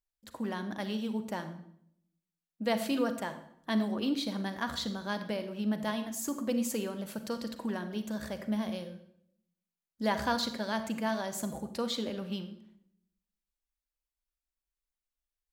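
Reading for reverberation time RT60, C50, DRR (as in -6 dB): 0.70 s, 10.0 dB, 9.0 dB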